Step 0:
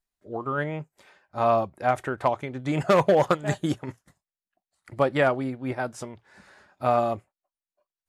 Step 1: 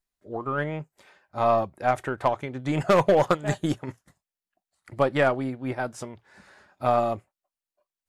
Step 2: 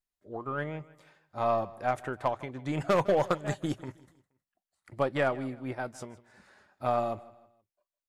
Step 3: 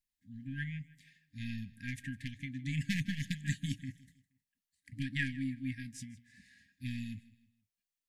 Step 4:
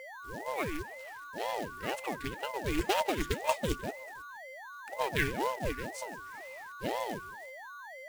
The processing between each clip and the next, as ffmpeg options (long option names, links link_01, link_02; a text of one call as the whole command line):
ffmpeg -i in.wav -af "aeval=exprs='0.376*(cos(1*acos(clip(val(0)/0.376,-1,1)))-cos(1*PI/2))+0.0106*(cos(6*acos(clip(val(0)/0.376,-1,1)))-cos(6*PI/2))':channel_layout=same" out.wav
ffmpeg -i in.wav -af "aecho=1:1:158|316|474:0.1|0.039|0.0152,volume=-6dB" out.wav
ffmpeg -i in.wav -af "afftfilt=real='re*(1-between(b*sr/4096,280,1600))':imag='im*(1-between(b*sr/4096,280,1600))':win_size=4096:overlap=0.75" out.wav
ffmpeg -i in.wav -af "aeval=exprs='val(0)+0.00447*sin(2*PI*1300*n/s)':channel_layout=same,acrusher=bits=3:mode=log:mix=0:aa=0.000001,aeval=exprs='val(0)*sin(2*PI*460*n/s+460*0.7/2*sin(2*PI*2*n/s))':channel_layout=same,volume=7dB" out.wav